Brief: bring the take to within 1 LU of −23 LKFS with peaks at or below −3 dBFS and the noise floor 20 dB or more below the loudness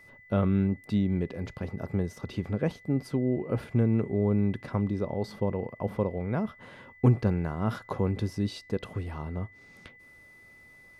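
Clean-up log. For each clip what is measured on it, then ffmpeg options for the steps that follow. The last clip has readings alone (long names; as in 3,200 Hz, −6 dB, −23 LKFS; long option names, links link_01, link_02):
interfering tone 2,000 Hz; level of the tone −52 dBFS; integrated loudness −29.5 LKFS; sample peak −11.0 dBFS; target loudness −23.0 LKFS
→ -af "bandreject=frequency=2000:width=30"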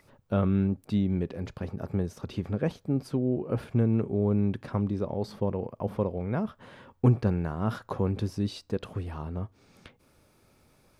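interfering tone none found; integrated loudness −30.0 LKFS; sample peak −11.0 dBFS; target loudness −23.0 LKFS
→ -af "volume=7dB"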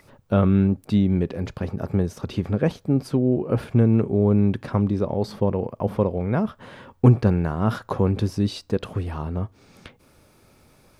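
integrated loudness −23.0 LKFS; sample peak −4.0 dBFS; background noise floor −57 dBFS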